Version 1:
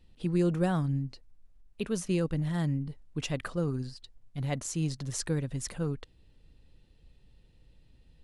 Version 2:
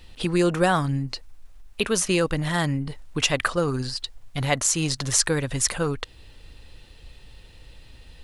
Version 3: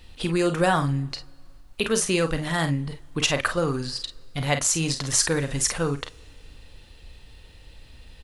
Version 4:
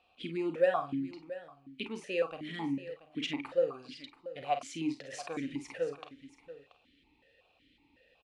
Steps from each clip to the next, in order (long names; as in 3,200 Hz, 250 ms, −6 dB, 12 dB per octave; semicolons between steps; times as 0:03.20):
drawn EQ curve 100 Hz 0 dB, 160 Hz −6 dB, 1,100 Hz +8 dB; in parallel at +2.5 dB: downward compressor, threshold −39 dBFS, peak gain reduction 15.5 dB; on the sum: level +5 dB
ambience of single reflections 36 ms −11.5 dB, 49 ms −10 dB; on a send at −19 dB: convolution reverb, pre-delay 3 ms; on the sum: level −1 dB
single-tap delay 682 ms −15 dB; formant filter that steps through the vowels 5.4 Hz